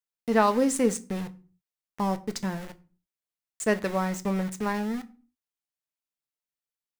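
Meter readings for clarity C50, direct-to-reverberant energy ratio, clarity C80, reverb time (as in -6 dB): 20.5 dB, 10.0 dB, 24.5 dB, 0.40 s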